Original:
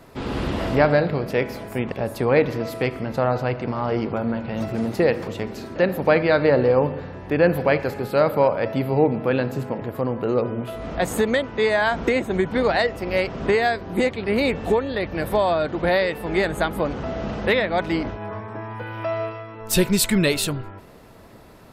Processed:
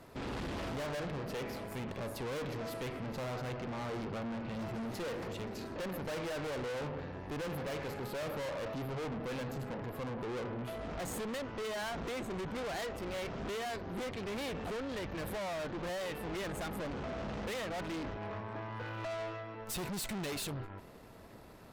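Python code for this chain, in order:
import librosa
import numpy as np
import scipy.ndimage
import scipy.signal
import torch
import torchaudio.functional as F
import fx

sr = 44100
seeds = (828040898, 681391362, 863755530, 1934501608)

y = fx.tube_stage(x, sr, drive_db=33.0, bias=0.65)
y = F.gain(torch.from_numpy(y), -4.0).numpy()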